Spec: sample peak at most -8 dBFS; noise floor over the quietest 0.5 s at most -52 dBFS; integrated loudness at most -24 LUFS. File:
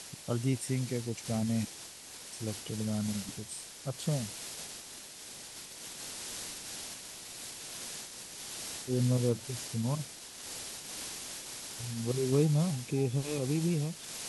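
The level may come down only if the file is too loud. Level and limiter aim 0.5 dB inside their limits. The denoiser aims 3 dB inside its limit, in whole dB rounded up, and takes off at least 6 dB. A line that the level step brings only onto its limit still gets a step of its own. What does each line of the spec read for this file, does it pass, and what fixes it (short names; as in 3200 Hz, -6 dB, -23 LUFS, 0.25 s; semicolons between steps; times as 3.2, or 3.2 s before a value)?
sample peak -16.0 dBFS: OK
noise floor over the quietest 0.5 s -48 dBFS: fail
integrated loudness -35.0 LUFS: OK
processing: denoiser 7 dB, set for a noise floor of -48 dBFS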